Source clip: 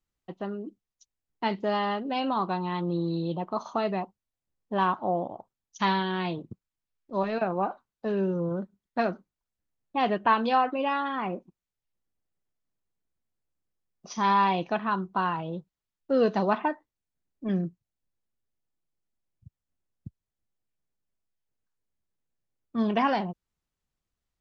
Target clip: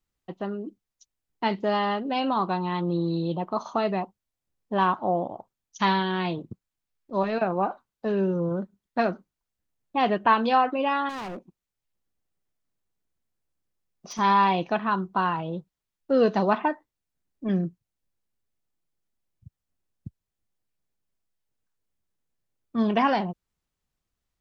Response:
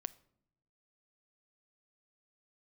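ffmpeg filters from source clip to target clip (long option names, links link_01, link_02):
-filter_complex "[0:a]asettb=1/sr,asplit=3[link_01][link_02][link_03];[link_01]atrim=end=11.094[link_04];[link_02]atrim=start=11.09:end=14.19,asetpts=PTS-STARTPTS,afade=type=in:duration=0.004:curve=qsin,afade=type=out:start_time=3.096:duration=0.004:curve=qsin,volume=35.5dB,asoftclip=hard,volume=-35.5dB[link_05];[link_03]atrim=start=14.186[link_06];[link_04][link_05]acrossfade=duration=0.004:curve1=hsin:curve2=qsin[link_07];[link_07][link_06]acrossfade=duration=0.004:curve1=qsin:curve2=hsin,volume=2.5dB"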